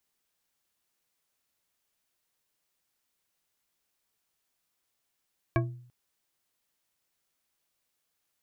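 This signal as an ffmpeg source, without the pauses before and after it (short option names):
-f lavfi -i "aevalsrc='0.0794*pow(10,-3*t/0.59)*sin(2*PI*123*t)+0.0631*pow(10,-3*t/0.29)*sin(2*PI*339.1*t)+0.0501*pow(10,-3*t/0.181)*sin(2*PI*664.7*t)+0.0398*pow(10,-3*t/0.127)*sin(2*PI*1098.8*t)+0.0316*pow(10,-3*t/0.096)*sin(2*PI*1640.8*t)+0.0251*pow(10,-3*t/0.076)*sin(2*PI*2292.7*t)':d=0.34:s=44100"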